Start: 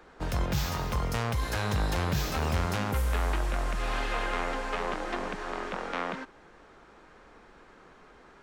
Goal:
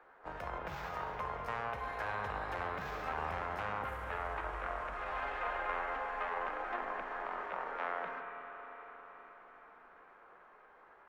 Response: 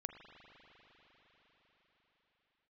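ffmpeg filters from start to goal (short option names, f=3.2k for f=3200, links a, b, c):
-filter_complex "[0:a]acrossover=split=500 2200:gain=0.126 1 0.0794[a][b][c];[a][b][c]amix=inputs=3:normalize=0,atempo=0.76[d];[1:a]atrim=start_sample=2205[e];[d][e]afir=irnorm=-1:irlink=0,volume=1dB"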